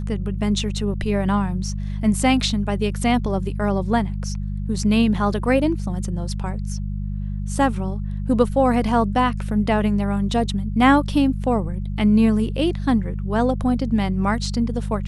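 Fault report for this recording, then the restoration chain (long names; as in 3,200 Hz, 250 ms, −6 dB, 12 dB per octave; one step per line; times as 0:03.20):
mains hum 50 Hz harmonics 4 −26 dBFS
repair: hum removal 50 Hz, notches 4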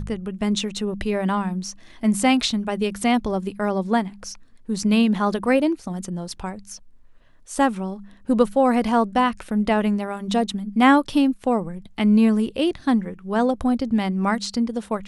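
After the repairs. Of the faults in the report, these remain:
none of them is left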